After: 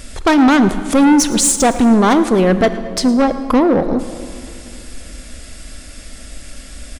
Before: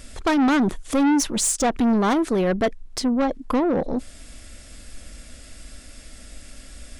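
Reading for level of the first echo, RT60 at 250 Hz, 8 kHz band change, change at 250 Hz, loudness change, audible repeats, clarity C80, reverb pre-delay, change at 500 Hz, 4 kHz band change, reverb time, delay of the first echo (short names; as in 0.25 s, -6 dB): -18.5 dB, 2.9 s, +8.0 dB, +8.5 dB, +8.5 dB, 1, 12.0 dB, 30 ms, +8.5 dB, +8.5 dB, 2.6 s, 0.111 s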